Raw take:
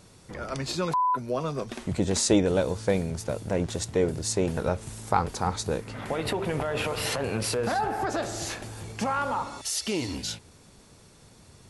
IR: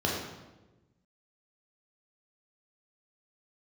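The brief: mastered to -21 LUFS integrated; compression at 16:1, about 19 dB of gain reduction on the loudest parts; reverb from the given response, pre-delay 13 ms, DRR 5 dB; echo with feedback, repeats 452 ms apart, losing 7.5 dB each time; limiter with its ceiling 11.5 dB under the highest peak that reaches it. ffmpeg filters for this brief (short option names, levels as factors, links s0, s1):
-filter_complex "[0:a]acompressor=threshold=0.0178:ratio=16,alimiter=level_in=3.16:limit=0.0631:level=0:latency=1,volume=0.316,aecho=1:1:452|904|1356|1808|2260:0.422|0.177|0.0744|0.0312|0.0131,asplit=2[s0][s1];[1:a]atrim=start_sample=2205,adelay=13[s2];[s1][s2]afir=irnorm=-1:irlink=0,volume=0.168[s3];[s0][s3]amix=inputs=2:normalize=0,volume=8.91"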